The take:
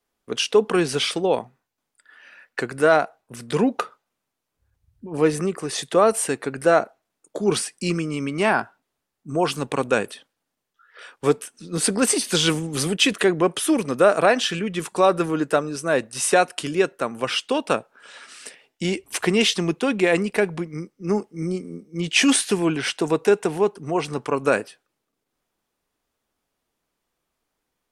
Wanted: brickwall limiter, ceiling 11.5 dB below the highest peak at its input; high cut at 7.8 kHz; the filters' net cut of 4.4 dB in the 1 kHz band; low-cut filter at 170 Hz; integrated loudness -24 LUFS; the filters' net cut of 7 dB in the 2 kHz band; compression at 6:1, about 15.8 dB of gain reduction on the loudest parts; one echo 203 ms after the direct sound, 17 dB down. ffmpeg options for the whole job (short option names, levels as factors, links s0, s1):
-af "highpass=170,lowpass=7800,equalizer=f=1000:t=o:g=-4,equalizer=f=2000:t=o:g=-8.5,acompressor=threshold=0.0282:ratio=6,alimiter=level_in=1.68:limit=0.0631:level=0:latency=1,volume=0.596,aecho=1:1:203:0.141,volume=5.31"